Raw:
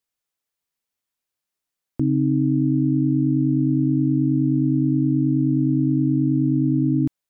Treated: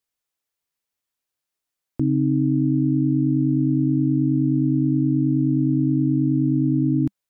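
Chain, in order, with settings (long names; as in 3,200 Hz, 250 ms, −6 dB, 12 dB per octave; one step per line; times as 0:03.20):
parametric band 200 Hz −5 dB 0.24 octaves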